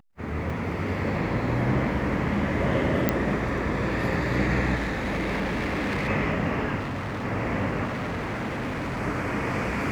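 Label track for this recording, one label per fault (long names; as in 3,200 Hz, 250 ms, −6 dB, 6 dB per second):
0.500000	0.500000	drop-out 3.6 ms
3.090000	3.090000	click −7 dBFS
4.750000	6.090000	clipping −24 dBFS
6.790000	7.250000	clipping −28 dBFS
7.840000	9.010000	clipping −26.5 dBFS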